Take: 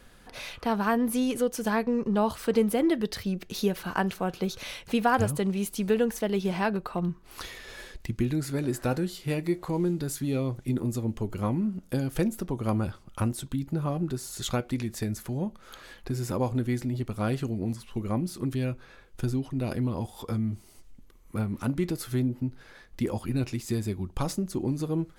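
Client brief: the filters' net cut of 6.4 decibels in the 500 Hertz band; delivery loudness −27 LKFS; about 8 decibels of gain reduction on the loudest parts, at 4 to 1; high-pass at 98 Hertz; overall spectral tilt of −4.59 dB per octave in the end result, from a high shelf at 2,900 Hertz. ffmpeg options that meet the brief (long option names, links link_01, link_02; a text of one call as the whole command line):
ffmpeg -i in.wav -af "highpass=98,equalizer=frequency=500:width_type=o:gain=-8.5,highshelf=frequency=2900:gain=6,acompressor=threshold=-31dB:ratio=4,volume=8.5dB" out.wav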